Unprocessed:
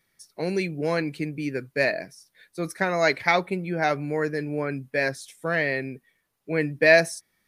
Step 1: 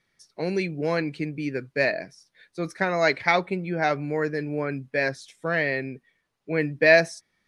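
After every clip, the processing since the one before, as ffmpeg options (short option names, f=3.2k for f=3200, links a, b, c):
-af "lowpass=6.2k"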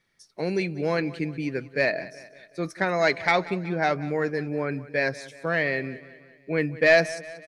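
-af "asoftclip=type=tanh:threshold=-7.5dB,aecho=1:1:186|372|558|744:0.126|0.0667|0.0354|0.0187"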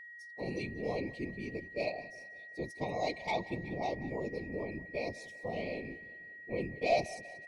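-af "asuperstop=centerf=1500:order=12:qfactor=1.2,afftfilt=real='hypot(re,im)*cos(2*PI*random(0))':imag='hypot(re,im)*sin(2*PI*random(1))':win_size=512:overlap=0.75,aeval=exprs='val(0)+0.00708*sin(2*PI*1900*n/s)':c=same,volume=-4.5dB"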